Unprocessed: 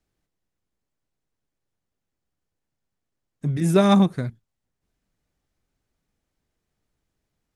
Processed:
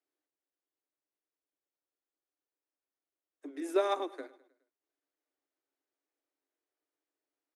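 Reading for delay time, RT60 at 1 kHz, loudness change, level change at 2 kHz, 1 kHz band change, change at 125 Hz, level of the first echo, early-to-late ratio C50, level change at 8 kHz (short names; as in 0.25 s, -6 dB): 0.104 s, none, -14.0 dB, -11.0 dB, -10.0 dB, under -40 dB, -19.0 dB, none, -15.0 dB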